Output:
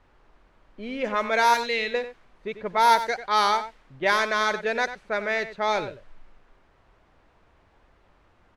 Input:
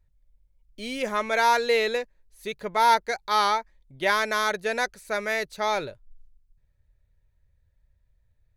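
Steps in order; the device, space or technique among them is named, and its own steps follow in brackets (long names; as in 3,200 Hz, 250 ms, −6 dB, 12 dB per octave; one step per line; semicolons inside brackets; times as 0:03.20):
0:01.54–0:01.94: flat-topped bell 660 Hz −9 dB 2.6 octaves
single-tap delay 94 ms −12 dB
cassette deck with a dynamic noise filter (white noise bed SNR 24 dB; low-pass that shuts in the quiet parts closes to 1,200 Hz, open at −16 dBFS)
level +1 dB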